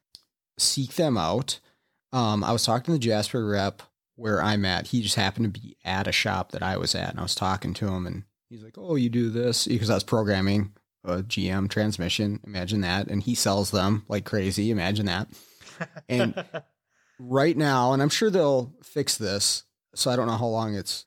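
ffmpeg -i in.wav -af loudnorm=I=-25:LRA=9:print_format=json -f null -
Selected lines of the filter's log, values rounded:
"input_i" : "-25.4",
"input_tp" : "-8.1",
"input_lra" : "2.1",
"input_thresh" : "-35.9",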